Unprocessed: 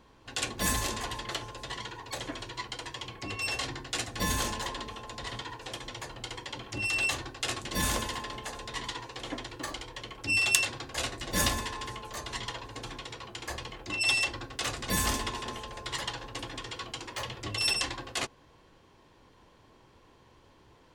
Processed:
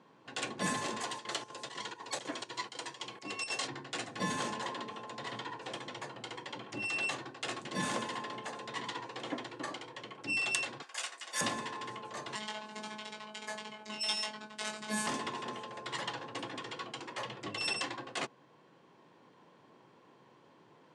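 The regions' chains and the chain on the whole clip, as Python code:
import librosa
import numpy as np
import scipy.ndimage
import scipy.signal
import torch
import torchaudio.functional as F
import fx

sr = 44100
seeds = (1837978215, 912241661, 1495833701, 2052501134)

y = fx.chain(x, sr, fx.highpass(hz=59.0, slope=12),
    fx.bass_treble(bass_db=-5, treble_db=10),
    fx.chopper(hz=4.0, depth_pct=65, duty_pct=75), at=(1.0, 3.68))
y = fx.chain(y, sr, fx.highpass(hz=1000.0, slope=12),
    fx.high_shelf(hz=5800.0, db=12.0),
    fx.notch(hz=4000.0, q=13.0), at=(10.82, 11.41))
y = fx.chain(y, sr, fx.high_shelf(hz=5400.0, db=7.0),
    fx.robotise(hz=214.0),
    fx.doubler(ms=20.0, db=-3), at=(12.35, 15.07))
y = scipy.signal.sosfilt(scipy.signal.ellip(3, 1.0, 40, [150.0, 9200.0], 'bandpass', fs=sr, output='sos'), y)
y = fx.rider(y, sr, range_db=3, speed_s=2.0)
y = fx.high_shelf(y, sr, hz=3000.0, db=-8.5)
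y = y * 10.0 ** (-2.0 / 20.0)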